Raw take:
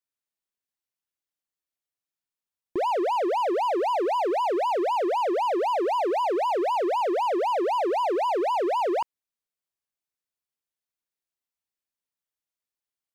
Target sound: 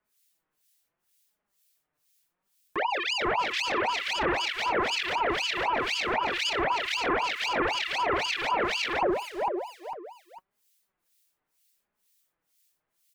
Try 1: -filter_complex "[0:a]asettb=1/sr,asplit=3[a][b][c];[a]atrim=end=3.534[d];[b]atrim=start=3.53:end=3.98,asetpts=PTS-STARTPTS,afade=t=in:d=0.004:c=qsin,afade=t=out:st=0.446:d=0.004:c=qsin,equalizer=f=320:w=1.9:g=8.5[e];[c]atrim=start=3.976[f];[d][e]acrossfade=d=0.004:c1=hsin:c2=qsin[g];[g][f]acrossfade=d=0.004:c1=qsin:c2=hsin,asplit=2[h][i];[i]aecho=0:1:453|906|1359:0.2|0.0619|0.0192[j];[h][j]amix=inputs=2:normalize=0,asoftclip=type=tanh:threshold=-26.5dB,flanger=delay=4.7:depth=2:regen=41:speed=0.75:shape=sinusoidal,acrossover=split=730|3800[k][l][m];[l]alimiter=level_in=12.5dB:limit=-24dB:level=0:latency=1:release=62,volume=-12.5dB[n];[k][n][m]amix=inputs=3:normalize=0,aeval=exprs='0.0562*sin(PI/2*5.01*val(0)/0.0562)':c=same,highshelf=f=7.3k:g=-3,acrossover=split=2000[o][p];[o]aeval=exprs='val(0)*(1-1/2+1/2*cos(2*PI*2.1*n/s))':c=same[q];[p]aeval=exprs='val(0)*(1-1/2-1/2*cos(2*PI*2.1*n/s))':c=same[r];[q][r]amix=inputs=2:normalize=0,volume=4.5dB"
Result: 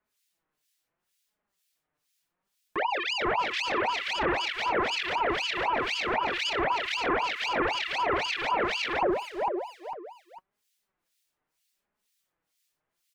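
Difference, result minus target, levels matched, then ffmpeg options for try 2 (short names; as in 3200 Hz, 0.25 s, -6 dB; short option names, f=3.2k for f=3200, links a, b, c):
8000 Hz band -3.5 dB
-filter_complex "[0:a]asettb=1/sr,asplit=3[a][b][c];[a]atrim=end=3.534[d];[b]atrim=start=3.53:end=3.98,asetpts=PTS-STARTPTS,afade=t=in:d=0.004:c=qsin,afade=t=out:st=0.446:d=0.004:c=qsin,equalizer=f=320:w=1.9:g=8.5[e];[c]atrim=start=3.976[f];[d][e]acrossfade=d=0.004:c1=hsin:c2=qsin[g];[g][f]acrossfade=d=0.004:c1=qsin:c2=hsin,asplit=2[h][i];[i]aecho=0:1:453|906|1359:0.2|0.0619|0.0192[j];[h][j]amix=inputs=2:normalize=0,asoftclip=type=tanh:threshold=-26.5dB,flanger=delay=4.7:depth=2:regen=41:speed=0.75:shape=sinusoidal,acrossover=split=730|3800[k][l][m];[l]alimiter=level_in=12.5dB:limit=-24dB:level=0:latency=1:release=62,volume=-12.5dB[n];[k][n][m]amix=inputs=3:normalize=0,aeval=exprs='0.0562*sin(PI/2*5.01*val(0)/0.0562)':c=same,highshelf=f=7.3k:g=6.5,acrossover=split=2000[o][p];[o]aeval=exprs='val(0)*(1-1/2+1/2*cos(2*PI*2.1*n/s))':c=same[q];[p]aeval=exprs='val(0)*(1-1/2-1/2*cos(2*PI*2.1*n/s))':c=same[r];[q][r]amix=inputs=2:normalize=0,volume=4.5dB"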